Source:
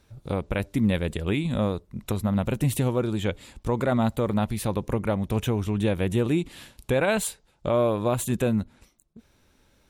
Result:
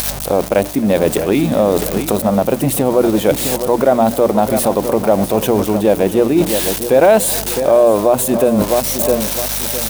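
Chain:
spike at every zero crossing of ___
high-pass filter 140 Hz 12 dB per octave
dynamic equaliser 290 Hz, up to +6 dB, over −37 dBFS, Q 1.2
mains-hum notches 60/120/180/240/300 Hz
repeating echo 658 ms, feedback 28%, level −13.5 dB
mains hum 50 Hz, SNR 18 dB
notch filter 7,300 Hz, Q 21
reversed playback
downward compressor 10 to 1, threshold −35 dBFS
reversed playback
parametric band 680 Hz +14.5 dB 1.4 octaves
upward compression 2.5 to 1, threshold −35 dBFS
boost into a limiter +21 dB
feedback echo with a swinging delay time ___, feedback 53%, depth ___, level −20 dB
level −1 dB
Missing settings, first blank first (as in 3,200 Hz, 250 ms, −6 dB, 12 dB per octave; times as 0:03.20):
−22 dBFS, 263 ms, 128 cents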